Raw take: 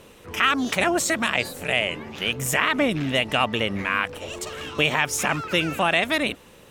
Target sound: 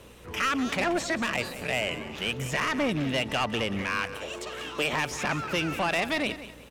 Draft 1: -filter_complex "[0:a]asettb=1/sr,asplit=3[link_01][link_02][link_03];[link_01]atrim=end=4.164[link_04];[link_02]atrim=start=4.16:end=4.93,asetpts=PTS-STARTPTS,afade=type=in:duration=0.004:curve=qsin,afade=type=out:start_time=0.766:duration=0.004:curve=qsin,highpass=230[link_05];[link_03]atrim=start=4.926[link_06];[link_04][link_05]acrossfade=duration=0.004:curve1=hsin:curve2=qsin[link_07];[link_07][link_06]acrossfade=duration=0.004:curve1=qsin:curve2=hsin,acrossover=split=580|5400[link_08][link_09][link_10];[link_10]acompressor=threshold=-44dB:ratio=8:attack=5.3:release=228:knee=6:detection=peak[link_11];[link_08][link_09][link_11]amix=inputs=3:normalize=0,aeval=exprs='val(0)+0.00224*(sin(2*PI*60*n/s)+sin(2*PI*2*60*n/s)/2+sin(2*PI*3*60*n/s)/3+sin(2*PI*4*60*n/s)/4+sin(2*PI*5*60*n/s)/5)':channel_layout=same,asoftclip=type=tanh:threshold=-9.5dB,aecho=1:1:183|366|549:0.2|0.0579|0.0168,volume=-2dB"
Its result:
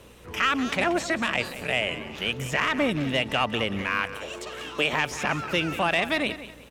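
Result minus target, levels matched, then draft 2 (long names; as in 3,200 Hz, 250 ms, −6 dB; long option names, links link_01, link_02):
soft clipping: distortion −10 dB
-filter_complex "[0:a]asettb=1/sr,asplit=3[link_01][link_02][link_03];[link_01]atrim=end=4.164[link_04];[link_02]atrim=start=4.16:end=4.93,asetpts=PTS-STARTPTS,afade=type=in:duration=0.004:curve=qsin,afade=type=out:start_time=0.766:duration=0.004:curve=qsin,highpass=230[link_05];[link_03]atrim=start=4.926[link_06];[link_04][link_05]acrossfade=duration=0.004:curve1=hsin:curve2=qsin[link_07];[link_07][link_06]acrossfade=duration=0.004:curve1=qsin:curve2=hsin,acrossover=split=580|5400[link_08][link_09][link_10];[link_10]acompressor=threshold=-44dB:ratio=8:attack=5.3:release=228:knee=6:detection=peak[link_11];[link_08][link_09][link_11]amix=inputs=3:normalize=0,aeval=exprs='val(0)+0.00224*(sin(2*PI*60*n/s)+sin(2*PI*2*60*n/s)/2+sin(2*PI*3*60*n/s)/3+sin(2*PI*4*60*n/s)/4+sin(2*PI*5*60*n/s)/5)':channel_layout=same,asoftclip=type=tanh:threshold=-18.5dB,aecho=1:1:183|366|549:0.2|0.0579|0.0168,volume=-2dB"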